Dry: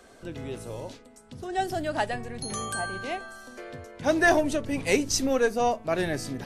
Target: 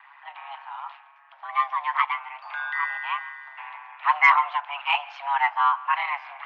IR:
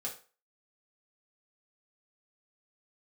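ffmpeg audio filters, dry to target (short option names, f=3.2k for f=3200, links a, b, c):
-filter_complex "[0:a]aeval=exprs='val(0)*sin(2*PI*70*n/s)':c=same,highpass=f=560:t=q:w=0.5412,highpass=f=560:t=q:w=1.307,lowpass=f=2.6k:t=q:w=0.5176,lowpass=f=2.6k:t=q:w=0.7071,lowpass=f=2.6k:t=q:w=1.932,afreqshift=360,asplit=2[a][b];[1:a]atrim=start_sample=2205,adelay=139[c];[b][c]afir=irnorm=-1:irlink=0,volume=-21dB[d];[a][d]amix=inputs=2:normalize=0,acontrast=68,volume=2dB"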